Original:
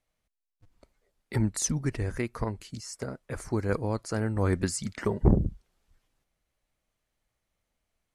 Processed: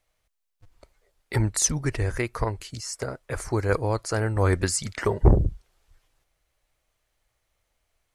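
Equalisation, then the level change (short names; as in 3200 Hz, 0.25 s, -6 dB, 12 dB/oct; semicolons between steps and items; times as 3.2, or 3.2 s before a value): bell 210 Hz -11 dB 0.98 oct; +7.0 dB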